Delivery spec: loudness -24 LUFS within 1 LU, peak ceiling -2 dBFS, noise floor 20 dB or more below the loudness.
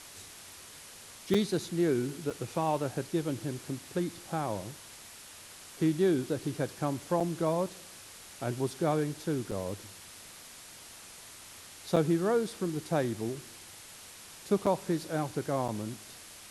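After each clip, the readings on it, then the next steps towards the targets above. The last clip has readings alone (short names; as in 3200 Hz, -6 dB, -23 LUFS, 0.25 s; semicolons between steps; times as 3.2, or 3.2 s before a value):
dropouts 7; longest dropout 5.4 ms; noise floor -50 dBFS; noise floor target -52 dBFS; loudness -32.0 LUFS; peak -12.5 dBFS; loudness target -24.0 LUFS
-> interpolate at 1.34/2.3/7.2/9.51/11.96/14.66/15.68, 5.4 ms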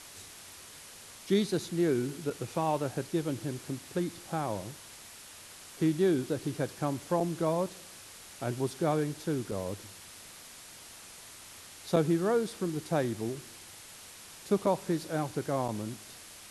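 dropouts 0; noise floor -50 dBFS; noise floor target -52 dBFS
-> denoiser 6 dB, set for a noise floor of -50 dBFS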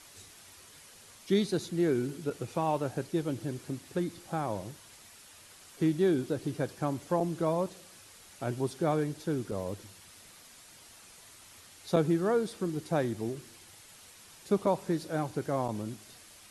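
noise floor -54 dBFS; loudness -32.0 LUFS; peak -12.5 dBFS; loudness target -24.0 LUFS
-> gain +8 dB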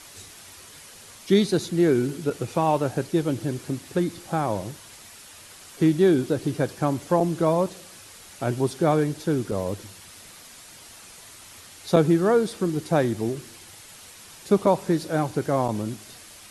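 loudness -24.0 LUFS; peak -4.5 dBFS; noise floor -46 dBFS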